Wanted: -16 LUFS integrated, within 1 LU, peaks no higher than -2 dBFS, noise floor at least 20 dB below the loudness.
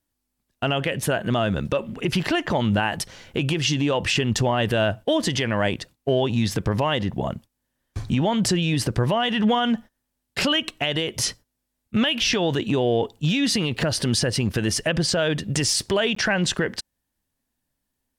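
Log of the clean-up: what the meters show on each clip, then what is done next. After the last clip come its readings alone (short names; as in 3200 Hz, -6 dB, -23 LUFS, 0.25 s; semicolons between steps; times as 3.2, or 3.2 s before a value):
dropouts 1; longest dropout 14 ms; loudness -23.0 LUFS; peak -12.0 dBFS; loudness target -16.0 LUFS
-> interpolate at 16.15, 14 ms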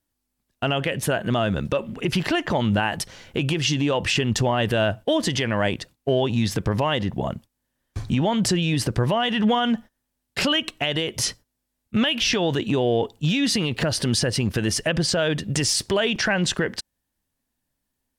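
dropouts 0; loudness -23.0 LUFS; peak -12.0 dBFS; loudness target -16.0 LUFS
-> gain +7 dB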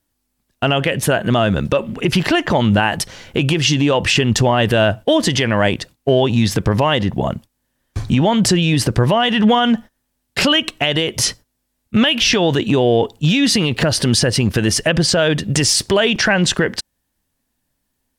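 loudness -16.0 LUFS; peak -5.0 dBFS; noise floor -72 dBFS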